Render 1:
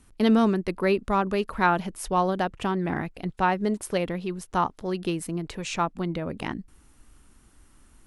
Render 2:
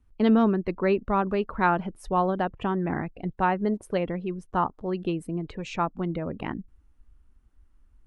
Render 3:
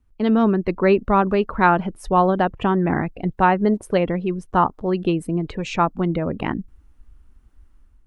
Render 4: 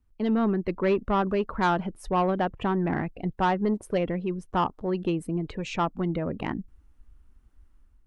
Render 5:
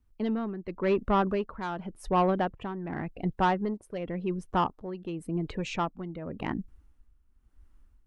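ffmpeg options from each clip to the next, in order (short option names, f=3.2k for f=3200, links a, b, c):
-af "afftdn=nr=14:nf=-43,aemphasis=mode=reproduction:type=75kf"
-af "dynaudnorm=f=170:g=5:m=8dB"
-af "asoftclip=type=tanh:threshold=-10.5dB,volume=-5.5dB"
-af "tremolo=f=0.9:d=0.72"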